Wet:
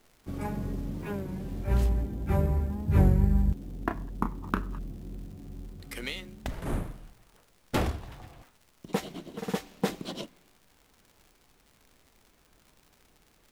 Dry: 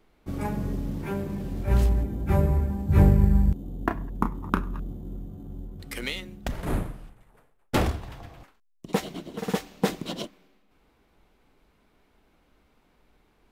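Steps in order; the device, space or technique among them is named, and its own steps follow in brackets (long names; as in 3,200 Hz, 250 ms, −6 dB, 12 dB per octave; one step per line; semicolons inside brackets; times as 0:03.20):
warped LP (wow of a warped record 33 1/3 rpm, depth 100 cents; surface crackle 130 per second −42 dBFS; pink noise bed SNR 36 dB)
level −4 dB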